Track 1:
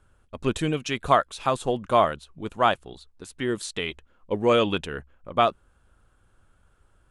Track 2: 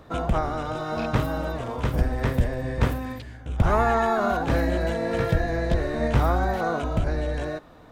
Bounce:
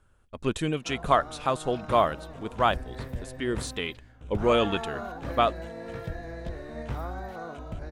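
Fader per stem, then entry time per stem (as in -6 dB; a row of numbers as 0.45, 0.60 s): -2.5, -13.0 dB; 0.00, 0.75 s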